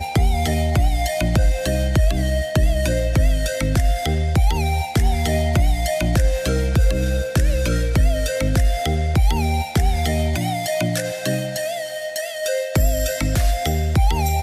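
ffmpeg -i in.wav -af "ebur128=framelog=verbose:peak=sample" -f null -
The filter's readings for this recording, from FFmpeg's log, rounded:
Integrated loudness:
  I:         -20.4 LUFS
  Threshold: -30.4 LUFS
Loudness range:
  LRA:         2.5 LU
  Threshold: -40.5 LUFS
  LRA low:   -22.4 LUFS
  LRA high:  -19.8 LUFS
Sample peak:
  Peak:       -8.6 dBFS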